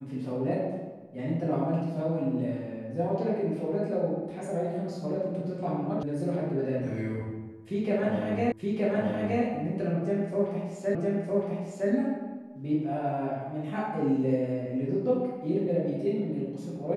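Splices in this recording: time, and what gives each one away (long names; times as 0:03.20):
0:06.03: cut off before it has died away
0:08.52: the same again, the last 0.92 s
0:10.95: the same again, the last 0.96 s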